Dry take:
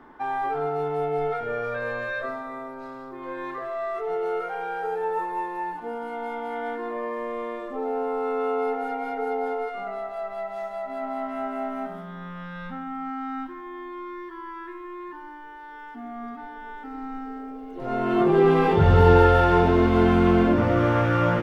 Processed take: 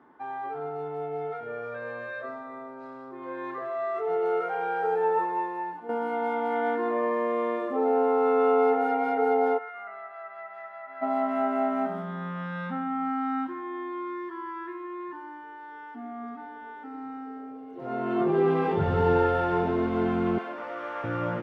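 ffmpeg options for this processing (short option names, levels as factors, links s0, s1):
-filter_complex "[0:a]asplit=3[s0][s1][s2];[s0]afade=t=out:st=9.57:d=0.02[s3];[s1]bandpass=f=1700:t=q:w=2.8,afade=t=in:st=9.57:d=0.02,afade=t=out:st=11.01:d=0.02[s4];[s2]afade=t=in:st=11.01:d=0.02[s5];[s3][s4][s5]amix=inputs=3:normalize=0,asettb=1/sr,asplit=3[s6][s7][s8];[s6]atrim=end=20.384[s9];[s7]atrim=start=20.38:end=21.04,asetpts=PTS-STARTPTS,afade=t=in:d=0.004:c=qsin,afade=t=out:st=0.656:d=0.004:c=qsin,highpass=720[s10];[s8]atrim=start=21.036[s11];[s9][s10]acrossfade=d=0.004:c1=hsin:c2=qsin[s12];[s12][s11]acrossfade=d=0.004:c1=qsin:c2=hsin,asplit=2[s13][s14];[s13]atrim=end=5.89,asetpts=PTS-STARTPTS,afade=t=out:st=5.1:d=0.79:silence=0.281838[s15];[s14]atrim=start=5.89,asetpts=PTS-STARTPTS,afade=t=in:d=0.004:c=hsin:silence=0.281838[s16];[s15][s16]concat=n=2:v=0:a=1,highpass=120,highshelf=f=3500:g=-10.5,dynaudnorm=f=380:g=21:m=3.76,volume=0.447"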